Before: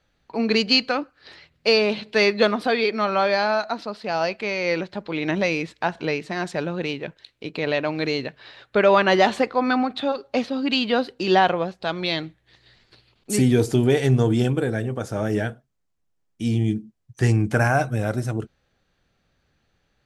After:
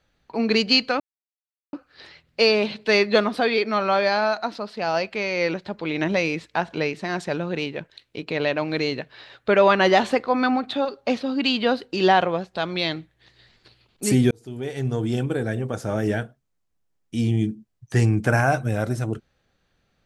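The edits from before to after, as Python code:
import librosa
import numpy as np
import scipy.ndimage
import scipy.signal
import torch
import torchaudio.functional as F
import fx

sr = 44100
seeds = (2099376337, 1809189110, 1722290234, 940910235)

y = fx.edit(x, sr, fx.insert_silence(at_s=1.0, length_s=0.73),
    fx.fade_in_span(start_s=13.58, length_s=1.31), tone=tone)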